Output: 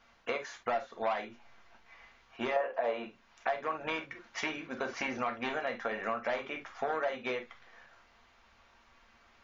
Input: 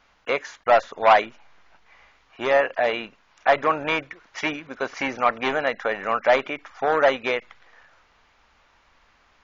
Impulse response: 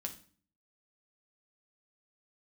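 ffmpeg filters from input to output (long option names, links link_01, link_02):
-filter_complex "[0:a]asettb=1/sr,asplit=3[link_01][link_02][link_03];[link_01]atrim=end=2.564[link_04];[link_02]atrim=start=2.56:end=3.04,asetpts=PTS-STARTPTS,afade=type=in:duration=0.004:curve=qsin,afade=type=out:start_time=0.476:duration=0.004:curve=qsin,equalizer=frequency=125:width_type=o:width=1:gain=-5,equalizer=frequency=500:width_type=o:width=1:gain=10,equalizer=frequency=1000:width_type=o:width=1:gain=9[link_05];[link_03]atrim=start=3.036[link_06];[link_04][link_05]acrossfade=duration=0.004:curve1=hsin:curve2=qsin[link_07];[link_07][link_06]acrossfade=duration=0.004:curve1=qsin:curve2=hsin[link_08];[1:a]atrim=start_sample=2205,atrim=end_sample=3969,asetrate=52920,aresample=44100[link_09];[link_08][link_09]afir=irnorm=-1:irlink=0,acompressor=threshold=-32dB:ratio=4"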